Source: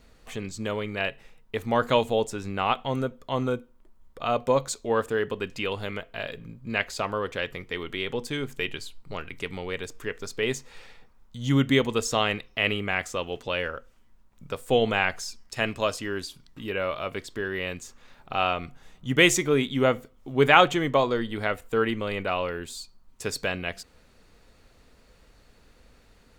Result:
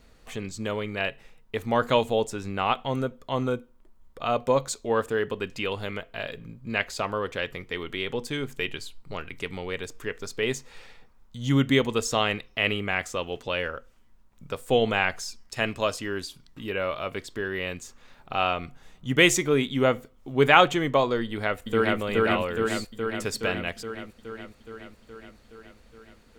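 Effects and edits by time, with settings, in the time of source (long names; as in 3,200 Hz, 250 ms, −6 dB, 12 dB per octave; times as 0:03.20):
0:21.24–0:22.00: delay throw 420 ms, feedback 70%, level 0 dB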